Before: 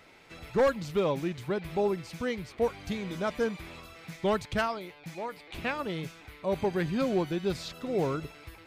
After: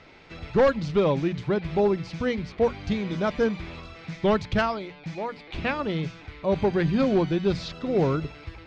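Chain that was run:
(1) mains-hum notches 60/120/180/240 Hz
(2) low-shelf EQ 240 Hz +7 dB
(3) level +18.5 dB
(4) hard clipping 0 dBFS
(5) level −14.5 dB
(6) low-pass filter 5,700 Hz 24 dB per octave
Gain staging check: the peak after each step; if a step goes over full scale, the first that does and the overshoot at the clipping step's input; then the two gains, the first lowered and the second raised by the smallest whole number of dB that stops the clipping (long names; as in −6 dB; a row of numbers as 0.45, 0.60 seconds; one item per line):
−17.5, −15.0, +3.5, 0.0, −14.5, −14.0 dBFS
step 3, 3.5 dB
step 3 +14.5 dB, step 5 −10.5 dB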